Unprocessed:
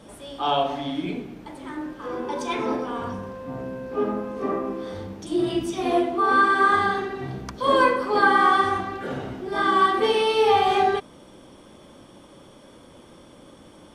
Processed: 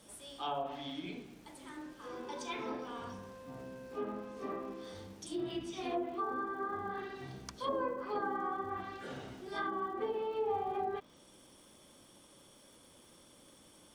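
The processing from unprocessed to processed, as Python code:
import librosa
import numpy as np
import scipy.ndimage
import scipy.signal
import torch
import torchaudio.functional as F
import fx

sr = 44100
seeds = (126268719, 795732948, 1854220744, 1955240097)

y = librosa.effects.preemphasis(x, coef=0.8, zi=[0.0])
y = fx.env_lowpass_down(y, sr, base_hz=780.0, full_db=-28.5)
y = fx.dmg_crackle(y, sr, seeds[0], per_s=260.0, level_db=-55.0)
y = y * 10.0 ** (-1.0 / 20.0)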